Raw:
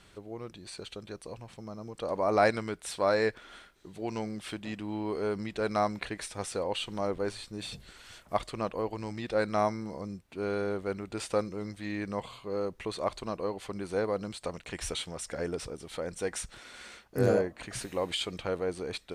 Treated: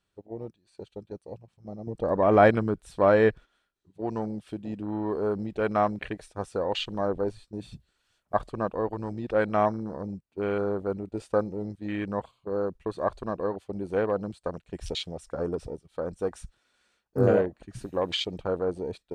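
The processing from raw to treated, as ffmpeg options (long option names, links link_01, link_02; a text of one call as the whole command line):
ffmpeg -i in.wav -filter_complex "[0:a]asettb=1/sr,asplit=3[link_01][link_02][link_03];[link_01]atrim=end=1.874[link_04];[link_02]atrim=start=1.87:end=3.45,asetpts=PTS-STARTPTS,afade=type=in:duration=0.004:curve=qsin,afade=type=out:start_time=1.576:duration=0.004:curve=qsin,lowshelf=frequency=400:gain=7.5[link_05];[link_03]atrim=start=3.446[link_06];[link_04][link_05]acrossfade=duration=0.004:curve1=hsin:curve2=qsin[link_07];[link_07][link_06]acrossfade=duration=0.004:curve1=qsin:curve2=hsin,agate=range=-9dB:threshold=-42dB:ratio=16:detection=peak,bandreject=frequency=2100:width=11,afwtdn=0.0112,volume=4dB" out.wav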